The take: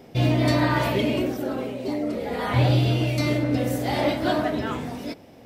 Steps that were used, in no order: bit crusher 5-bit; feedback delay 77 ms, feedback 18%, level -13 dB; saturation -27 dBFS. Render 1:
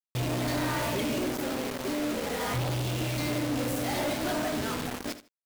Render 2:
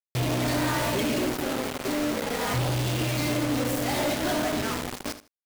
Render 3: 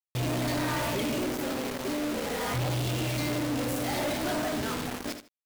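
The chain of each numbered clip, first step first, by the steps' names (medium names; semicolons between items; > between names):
bit crusher > saturation > feedback delay; saturation > bit crusher > feedback delay; bit crusher > feedback delay > saturation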